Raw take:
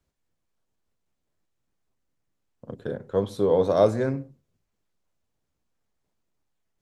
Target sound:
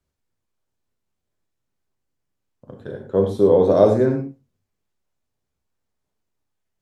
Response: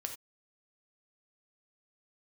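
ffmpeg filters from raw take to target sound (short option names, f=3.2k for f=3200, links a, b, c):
-filter_complex "[0:a]asettb=1/sr,asplit=3[a][b][c];[a]atrim=end=3.014[d];[b]atrim=start=3.01:end=4.2,asetpts=PTS-STARTPTS,afade=t=in:d=0.004:c=qsin,afade=t=out:st=1.186:d=0.004:c=qsin,equalizer=f=310:t=o:w=2.6:g=9.5[e];[c]atrim=start=4.196[f];[d][e]acrossfade=d=0.004:c1=hsin:c2=qsin[g];[g][f]acrossfade=d=0.004:c1=qsin:c2=hsin[h];[1:a]atrim=start_sample=2205,asetrate=35721,aresample=44100[i];[h][i]afir=irnorm=-1:irlink=0,volume=-1dB"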